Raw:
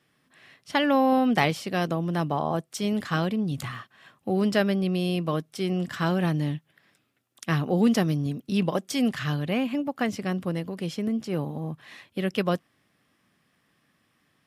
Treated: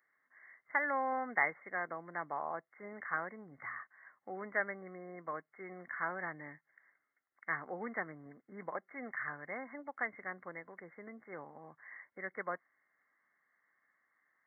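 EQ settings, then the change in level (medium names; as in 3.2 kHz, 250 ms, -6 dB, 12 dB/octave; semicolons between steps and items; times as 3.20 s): brick-wall FIR low-pass 2.2 kHz; differentiator; peaking EQ 160 Hz -6 dB 2.3 oct; +9.0 dB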